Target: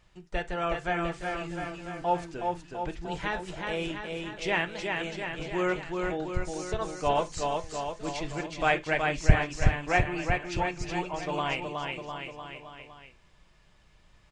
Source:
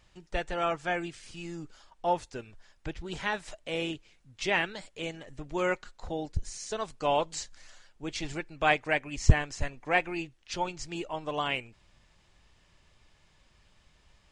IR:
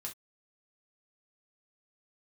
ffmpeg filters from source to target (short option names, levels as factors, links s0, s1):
-filter_complex "[0:a]aecho=1:1:370|703|1003|1272|1515:0.631|0.398|0.251|0.158|0.1,asplit=2[s0][s1];[1:a]atrim=start_sample=2205,lowpass=3400[s2];[s1][s2]afir=irnorm=-1:irlink=0,volume=0.75[s3];[s0][s3]amix=inputs=2:normalize=0,volume=0.708"